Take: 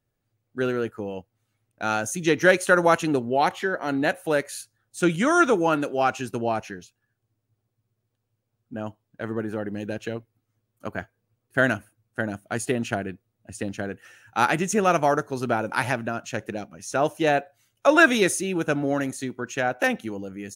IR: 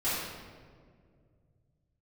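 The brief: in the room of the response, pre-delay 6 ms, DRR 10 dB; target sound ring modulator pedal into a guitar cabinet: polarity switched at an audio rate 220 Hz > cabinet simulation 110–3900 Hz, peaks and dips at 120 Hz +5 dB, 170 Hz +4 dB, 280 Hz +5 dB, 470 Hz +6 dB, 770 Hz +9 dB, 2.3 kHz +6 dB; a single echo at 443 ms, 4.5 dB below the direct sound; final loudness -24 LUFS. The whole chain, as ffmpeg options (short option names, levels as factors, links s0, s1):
-filter_complex "[0:a]aecho=1:1:443:0.596,asplit=2[s0][s1];[1:a]atrim=start_sample=2205,adelay=6[s2];[s1][s2]afir=irnorm=-1:irlink=0,volume=0.106[s3];[s0][s3]amix=inputs=2:normalize=0,aeval=exprs='val(0)*sgn(sin(2*PI*220*n/s))':c=same,highpass=110,equalizer=f=120:t=q:w=4:g=5,equalizer=f=170:t=q:w=4:g=4,equalizer=f=280:t=q:w=4:g=5,equalizer=f=470:t=q:w=4:g=6,equalizer=f=770:t=q:w=4:g=9,equalizer=f=2300:t=q:w=4:g=6,lowpass=f=3900:w=0.5412,lowpass=f=3900:w=1.3066,volume=0.562"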